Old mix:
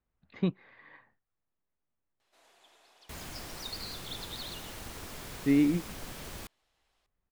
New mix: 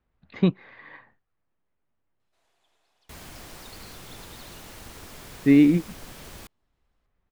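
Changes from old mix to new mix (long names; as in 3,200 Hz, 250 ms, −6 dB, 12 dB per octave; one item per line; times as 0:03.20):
speech +8.5 dB
first sound −10.0 dB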